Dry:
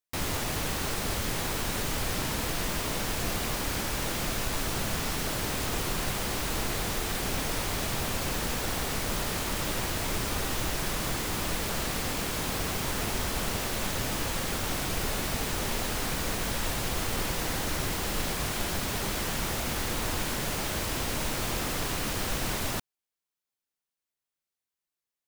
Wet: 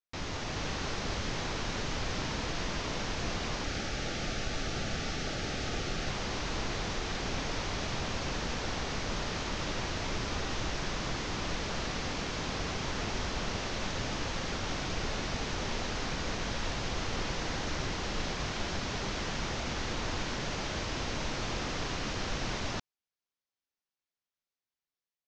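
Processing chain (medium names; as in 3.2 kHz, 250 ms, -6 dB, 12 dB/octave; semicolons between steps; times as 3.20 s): 3.64–6.08 s: Butterworth band-stop 1 kHz, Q 4.2; level rider gain up to 3 dB; steep low-pass 6.5 kHz 48 dB/octave; trim -6 dB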